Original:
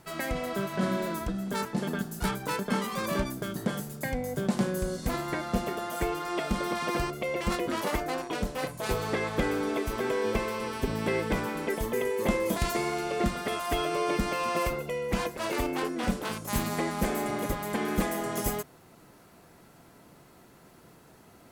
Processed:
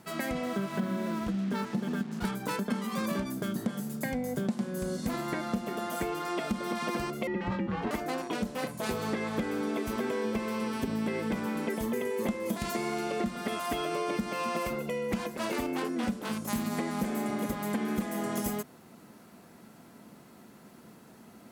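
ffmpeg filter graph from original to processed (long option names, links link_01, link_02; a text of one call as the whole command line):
ffmpeg -i in.wav -filter_complex "[0:a]asettb=1/sr,asplit=3[link_01][link_02][link_03];[link_01]atrim=end=0.434[link_04];[link_02]atrim=start=0.43:end=2.25,asetpts=PTS-STARTPTS,afade=type=in:duration=0.004:curve=qsin,afade=type=out:start_time=1.816:duration=0.004:curve=qsin,lowpass=4000,acrusher=bits=6:mix=0:aa=0.5,bandreject=frequency=620:width=18[link_05];[link_03]atrim=start=2.246[link_06];[link_04][link_05]acrossfade=duration=0.004:curve1=hsin:curve2=qsin[link_07];[link_07][link_06]acrossfade=duration=0.004:curve1=qsin:curve2=hsin,asettb=1/sr,asplit=3[link_08][link_09][link_10];[link_08]atrim=end=7.274[link_11];[link_09]atrim=start=7.27:end=7.91,asetpts=PTS-STARTPTS,afade=type=in:duration=0.004:curve=qsin,afade=type=out:start_time=0.636:duration=0.004:curve=qsin,lowpass=2400,afreqshift=-160[link_12];[link_10]atrim=start=7.906[link_13];[link_11][link_12]acrossfade=duration=0.004:curve1=hsin:curve2=qsin[link_14];[link_14][link_13]acrossfade=duration=0.004:curve1=qsin:curve2=hsin,highpass=frequency=120:poles=1,equalizer=frequency=220:width=3.1:gain=11,acompressor=threshold=-28dB:ratio=6" out.wav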